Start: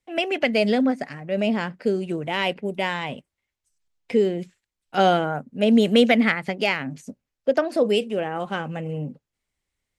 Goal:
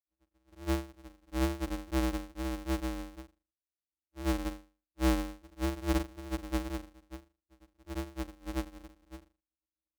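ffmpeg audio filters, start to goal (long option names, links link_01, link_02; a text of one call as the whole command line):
ffmpeg -i in.wav -af "asuperpass=centerf=190:order=12:qfactor=7.2,aeval=exprs='val(0)*sgn(sin(2*PI*130*n/s))':channel_layout=same,volume=1.5dB" out.wav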